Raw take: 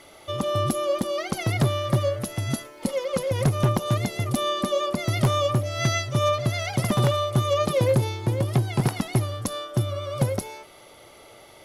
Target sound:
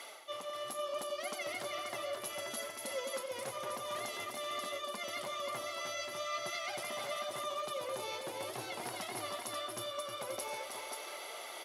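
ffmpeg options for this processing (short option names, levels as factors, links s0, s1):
-af "highpass=620,alimiter=limit=0.0891:level=0:latency=1:release=50,areverse,acompressor=threshold=0.00631:ratio=6,areverse,flanger=delay=4.2:depth=8.9:regen=54:speed=0.79:shape=sinusoidal,aecho=1:1:89|316|531|534:0.237|0.501|0.447|0.398,volume=2.37"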